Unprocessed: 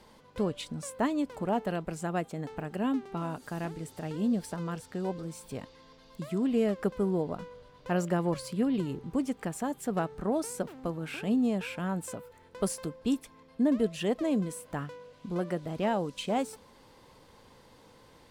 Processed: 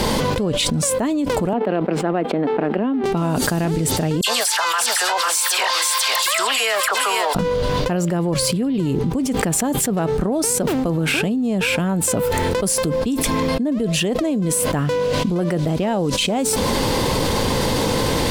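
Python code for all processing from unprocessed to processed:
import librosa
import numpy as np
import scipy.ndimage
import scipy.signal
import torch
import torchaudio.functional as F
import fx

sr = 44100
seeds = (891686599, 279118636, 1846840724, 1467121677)

y = fx.chain(x, sr, fx.law_mismatch(coded='A'),
    fx.highpass(hz=220.0, slope=24),
    fx.air_absorb(metres=420.0), at=(1.53, 3.04))
y = fx.chain(y, sr, fx.highpass(hz=980.0, slope=24),
    fx.dispersion(late='lows', ms=65.0, hz=2500.0),
    fx.echo_single(ms=499, db=-8.5), at=(4.21, 7.35))
y = fx.peak_eq(y, sr, hz=1300.0, db=-5.0, octaves=1.9)
y = fx.env_flatten(y, sr, amount_pct=100)
y = F.gain(torch.from_numpy(y), 3.5).numpy()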